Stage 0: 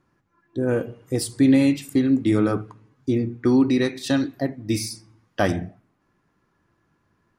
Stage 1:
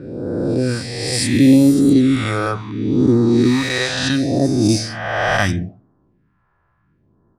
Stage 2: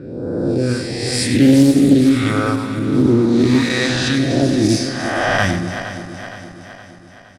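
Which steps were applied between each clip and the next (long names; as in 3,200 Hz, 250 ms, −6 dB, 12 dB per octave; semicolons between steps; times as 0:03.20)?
peak hold with a rise ahead of every peak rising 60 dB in 2.31 s; low-pass that shuts in the quiet parts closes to 1,400 Hz, open at −12 dBFS; all-pass phaser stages 2, 0.72 Hz, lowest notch 240–2,400 Hz; level +5.5 dB
feedback delay that plays each chunk backwards 233 ms, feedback 72%, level −10.5 dB; single-tap delay 96 ms −10.5 dB; highs frequency-modulated by the lows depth 0.17 ms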